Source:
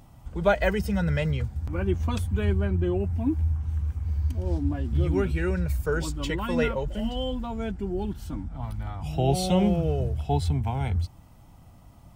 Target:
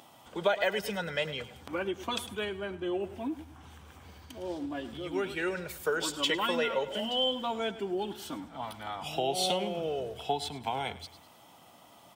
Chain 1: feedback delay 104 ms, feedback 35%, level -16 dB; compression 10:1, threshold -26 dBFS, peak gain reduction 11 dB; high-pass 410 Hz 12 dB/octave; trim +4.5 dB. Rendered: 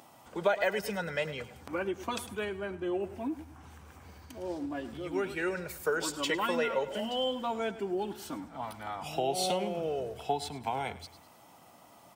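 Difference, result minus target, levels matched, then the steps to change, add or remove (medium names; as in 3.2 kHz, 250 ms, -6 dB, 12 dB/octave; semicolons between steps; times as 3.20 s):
4 kHz band -5.0 dB
add after high-pass: peaking EQ 3.3 kHz +8 dB 0.43 oct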